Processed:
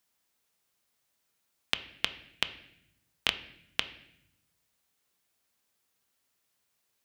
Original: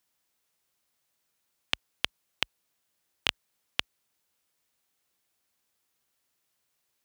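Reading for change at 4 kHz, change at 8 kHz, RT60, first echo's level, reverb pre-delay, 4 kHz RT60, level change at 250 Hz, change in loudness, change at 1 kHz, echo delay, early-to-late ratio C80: +0.5 dB, 0.0 dB, 0.75 s, no echo, 4 ms, 0.70 s, +1.0 dB, 0.0 dB, +0.5 dB, no echo, 16.5 dB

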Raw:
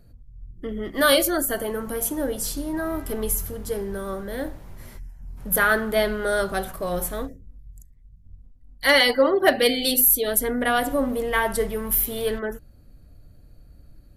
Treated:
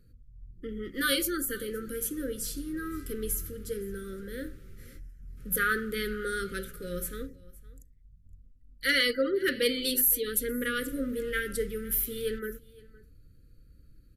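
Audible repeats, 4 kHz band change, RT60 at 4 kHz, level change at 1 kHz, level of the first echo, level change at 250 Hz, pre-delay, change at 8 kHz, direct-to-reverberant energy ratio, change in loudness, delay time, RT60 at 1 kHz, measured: 1, -7.0 dB, no reverb, -13.5 dB, -22.5 dB, -7.0 dB, no reverb, -7.0 dB, no reverb, -8.0 dB, 514 ms, no reverb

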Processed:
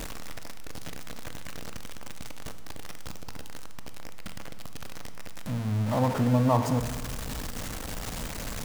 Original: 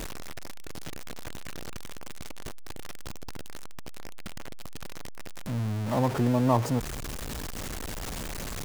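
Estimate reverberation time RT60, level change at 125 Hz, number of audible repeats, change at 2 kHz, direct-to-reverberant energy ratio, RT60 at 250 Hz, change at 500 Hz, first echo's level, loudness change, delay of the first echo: 1.5 s, +1.5 dB, no echo, +0.5 dB, 8.0 dB, 1.7 s, +0.5 dB, no echo, +1.5 dB, no echo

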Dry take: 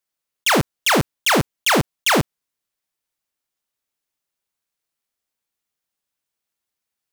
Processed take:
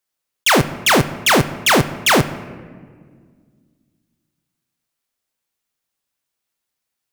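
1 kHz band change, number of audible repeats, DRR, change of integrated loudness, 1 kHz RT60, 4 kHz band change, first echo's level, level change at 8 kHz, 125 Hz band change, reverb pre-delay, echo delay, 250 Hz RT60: +3.5 dB, no echo, 10.5 dB, +3.0 dB, 1.5 s, +3.5 dB, no echo, +3.5 dB, +4.0 dB, 8 ms, no echo, 2.7 s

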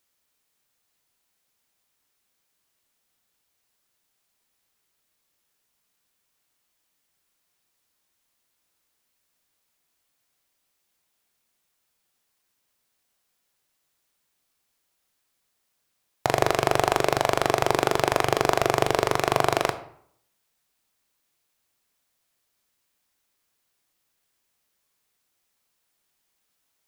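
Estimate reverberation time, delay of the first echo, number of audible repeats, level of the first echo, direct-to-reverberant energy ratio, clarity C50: 0.65 s, no echo, no echo, no echo, 10.0 dB, 13.5 dB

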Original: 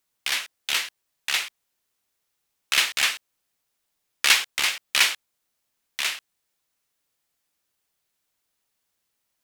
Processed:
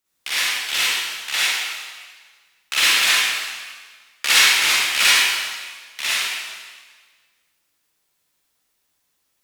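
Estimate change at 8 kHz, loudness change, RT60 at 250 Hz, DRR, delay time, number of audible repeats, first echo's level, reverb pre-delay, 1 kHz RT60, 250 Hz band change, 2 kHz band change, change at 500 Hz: +7.0 dB, +5.5 dB, 1.5 s, -10.0 dB, no echo, no echo, no echo, 39 ms, 1.5 s, +7.5 dB, +7.0 dB, +6.5 dB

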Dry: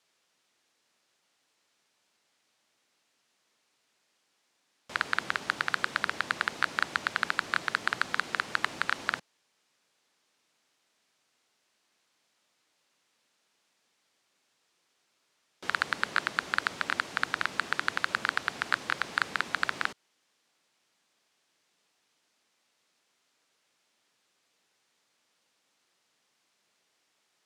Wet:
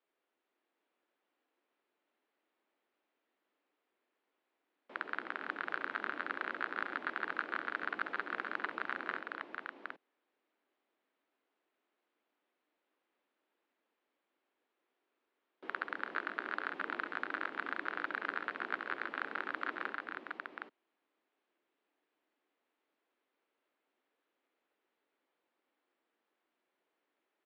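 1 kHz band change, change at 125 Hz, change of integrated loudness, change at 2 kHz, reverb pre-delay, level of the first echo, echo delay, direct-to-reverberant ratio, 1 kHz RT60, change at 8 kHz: -7.0 dB, under -15 dB, -9.0 dB, -8.5 dB, no reverb, -14.5 dB, 67 ms, no reverb, no reverb, under -30 dB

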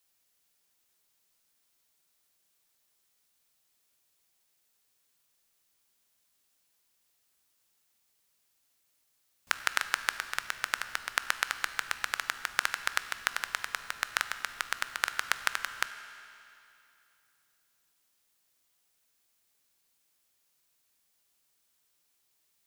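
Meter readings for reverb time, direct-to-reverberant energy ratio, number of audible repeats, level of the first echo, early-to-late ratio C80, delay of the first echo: 2.8 s, 10.5 dB, no echo, no echo, 12.0 dB, no echo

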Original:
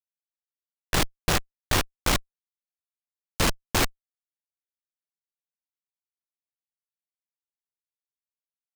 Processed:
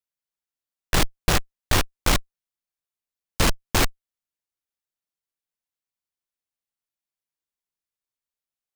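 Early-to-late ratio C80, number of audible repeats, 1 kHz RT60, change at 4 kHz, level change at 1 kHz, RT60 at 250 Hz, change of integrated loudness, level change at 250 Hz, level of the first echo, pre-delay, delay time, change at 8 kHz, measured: no reverb, no echo, no reverb, +2.0 dB, +2.0 dB, no reverb, +2.5 dB, +2.5 dB, no echo, no reverb, no echo, +2.0 dB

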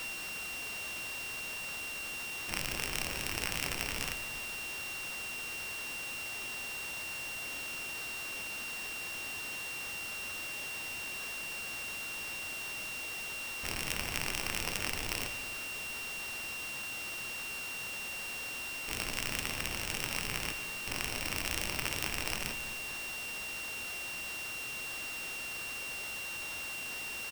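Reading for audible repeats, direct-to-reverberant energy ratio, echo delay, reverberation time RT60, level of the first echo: 1, 8.5 dB, 145 ms, 2.4 s, -16.5 dB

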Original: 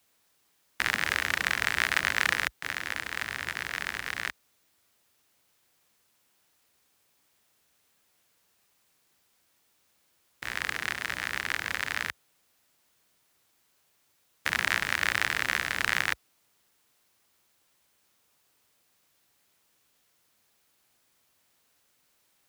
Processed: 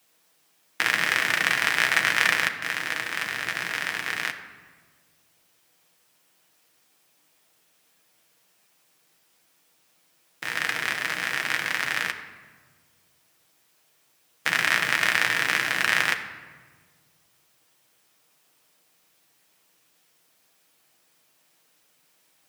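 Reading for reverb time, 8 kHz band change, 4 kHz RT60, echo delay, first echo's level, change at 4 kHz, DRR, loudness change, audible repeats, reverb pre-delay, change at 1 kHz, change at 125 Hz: 1.5 s, +5.0 dB, 0.90 s, no echo, no echo, +5.0 dB, 3.0 dB, +5.0 dB, no echo, 6 ms, +5.0 dB, +1.5 dB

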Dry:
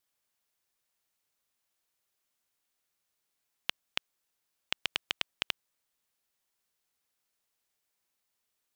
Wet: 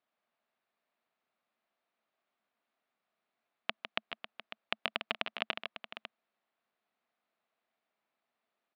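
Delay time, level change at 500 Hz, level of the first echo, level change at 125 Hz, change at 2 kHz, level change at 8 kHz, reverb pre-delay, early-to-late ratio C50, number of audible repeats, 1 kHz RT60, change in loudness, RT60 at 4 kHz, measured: 154 ms, +7.0 dB, -8.0 dB, -3.0 dB, +0.5 dB, under -20 dB, no reverb, no reverb, 3, no reverb, -3.0 dB, no reverb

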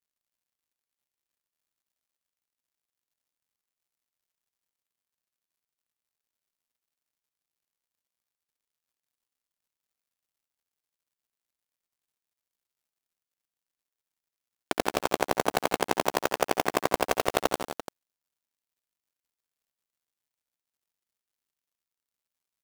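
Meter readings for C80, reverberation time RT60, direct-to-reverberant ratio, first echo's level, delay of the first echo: no reverb, no reverb, no reverb, -11.5 dB, 67 ms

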